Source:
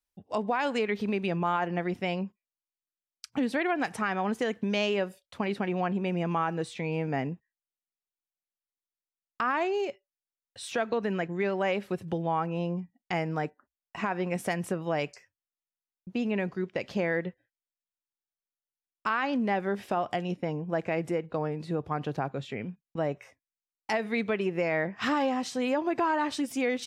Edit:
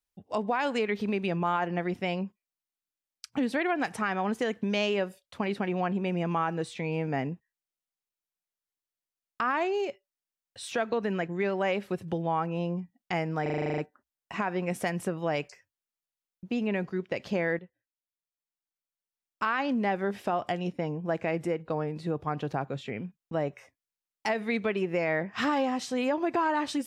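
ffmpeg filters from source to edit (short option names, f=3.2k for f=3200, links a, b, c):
-filter_complex "[0:a]asplit=11[a][b][c][d][e][f][g][h][i][j][k];[a]atrim=end=13.462[l];[b]atrim=start=13.418:end=13.462[m];[c]atrim=start=13.418:end=13.462[n];[d]atrim=start=13.418:end=13.462[o];[e]atrim=start=13.418:end=13.462[p];[f]atrim=start=13.418:end=13.462[q];[g]atrim=start=13.418:end=13.462[r];[h]atrim=start=13.418:end=13.462[s];[i]atrim=start=13.418:end=13.462[t];[j]atrim=start=13.418:end=17.23,asetpts=PTS-STARTPTS,afade=t=out:st=3.808:d=0.004:c=hsin:silence=0.223872[u];[k]atrim=start=17.23,asetpts=PTS-STARTPTS,afade=t=in:d=1.84:silence=0.223872[v];[l][m]acrossfade=d=0.004:c1=hsin:c2=hsin[w];[w][n]acrossfade=d=0.004:c1=hsin:c2=hsin[x];[x][o]acrossfade=d=0.004:c1=hsin:c2=hsin[y];[y][p]acrossfade=d=0.004:c1=hsin:c2=hsin[z];[z][q]acrossfade=d=0.004:c1=hsin:c2=hsin[aa];[aa][r]acrossfade=d=0.004:c1=hsin:c2=hsin[ab];[ab][s]acrossfade=d=0.004:c1=hsin:c2=hsin[ac];[ac][t]acrossfade=d=0.004:c1=hsin:c2=hsin[ad];[u][v]concat=n=2:v=0:a=1[ae];[ad][ae]acrossfade=d=0.004:c1=hsin:c2=hsin"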